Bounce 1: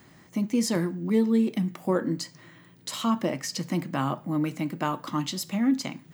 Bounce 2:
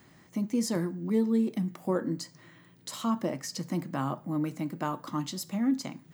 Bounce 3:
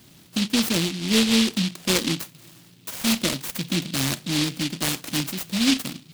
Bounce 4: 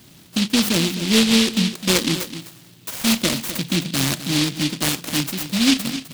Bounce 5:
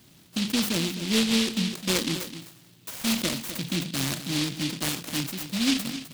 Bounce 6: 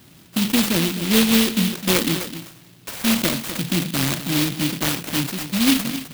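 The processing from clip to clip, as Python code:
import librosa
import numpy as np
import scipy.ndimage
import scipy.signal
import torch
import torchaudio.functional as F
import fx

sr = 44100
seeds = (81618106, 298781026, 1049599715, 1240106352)

y1 = fx.dynamic_eq(x, sr, hz=2700.0, q=1.2, threshold_db=-51.0, ratio=4.0, max_db=-6)
y1 = y1 * 10.0 ** (-3.5 / 20.0)
y2 = fx.noise_mod_delay(y1, sr, seeds[0], noise_hz=3400.0, depth_ms=0.36)
y2 = y2 * 10.0 ** (6.5 / 20.0)
y3 = y2 + 10.0 ** (-12.0 / 20.0) * np.pad(y2, (int(257 * sr / 1000.0), 0))[:len(y2)]
y3 = y3 * 10.0 ** (3.5 / 20.0)
y4 = fx.sustainer(y3, sr, db_per_s=120.0)
y4 = y4 * 10.0 ** (-7.5 / 20.0)
y5 = fx.clock_jitter(y4, sr, seeds[1], jitter_ms=0.037)
y5 = y5 * 10.0 ** (7.0 / 20.0)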